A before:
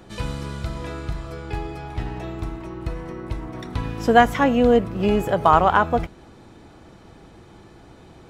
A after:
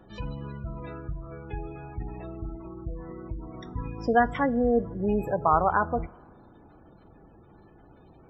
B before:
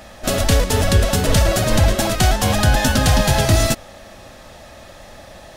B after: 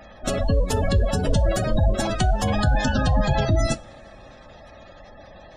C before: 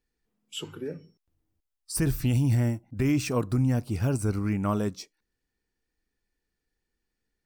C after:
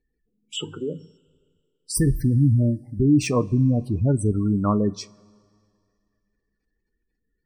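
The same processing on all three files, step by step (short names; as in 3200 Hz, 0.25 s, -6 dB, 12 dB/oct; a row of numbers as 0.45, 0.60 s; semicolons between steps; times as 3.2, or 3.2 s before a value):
spectral gate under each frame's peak -20 dB strong; two-slope reverb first 0.2 s, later 2.3 s, from -22 dB, DRR 13 dB; normalise peaks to -9 dBFS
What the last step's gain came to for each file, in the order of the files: -7.0, -4.5, +6.0 dB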